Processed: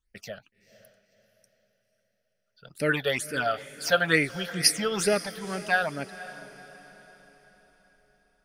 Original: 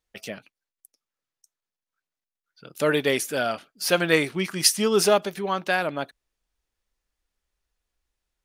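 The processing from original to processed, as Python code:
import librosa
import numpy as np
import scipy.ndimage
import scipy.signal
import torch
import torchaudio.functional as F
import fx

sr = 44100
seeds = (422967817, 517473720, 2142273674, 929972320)

y = fx.low_shelf(x, sr, hz=69.0, db=11.5)
y = fx.phaser_stages(y, sr, stages=8, low_hz=280.0, high_hz=1100.0, hz=2.2, feedback_pct=20)
y = fx.dynamic_eq(y, sr, hz=1400.0, q=0.85, threshold_db=-39.0, ratio=4.0, max_db=5)
y = fx.echo_diffused(y, sr, ms=507, feedback_pct=44, wet_db=-15.5)
y = F.gain(torch.from_numpy(y), -2.0).numpy()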